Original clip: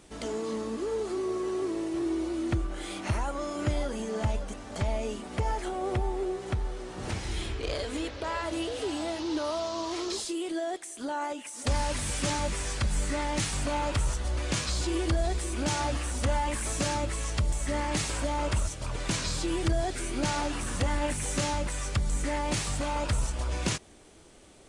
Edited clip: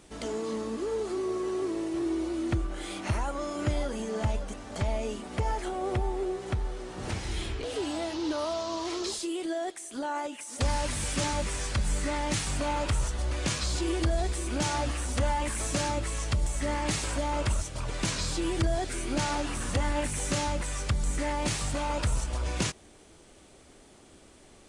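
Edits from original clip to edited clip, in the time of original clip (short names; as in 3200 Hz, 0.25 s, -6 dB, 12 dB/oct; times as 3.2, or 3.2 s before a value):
7.64–8.7 cut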